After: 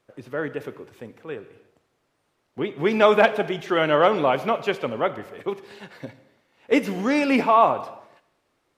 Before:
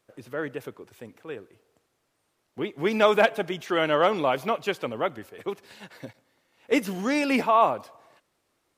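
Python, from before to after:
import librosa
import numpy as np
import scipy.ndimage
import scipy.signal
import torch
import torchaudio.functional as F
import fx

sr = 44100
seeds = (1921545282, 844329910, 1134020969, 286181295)

y = fx.high_shelf(x, sr, hz=5600.0, db=-10.0)
y = fx.rev_gated(y, sr, seeds[0], gate_ms=370, shape='falling', drr_db=12.0)
y = y * 10.0 ** (3.5 / 20.0)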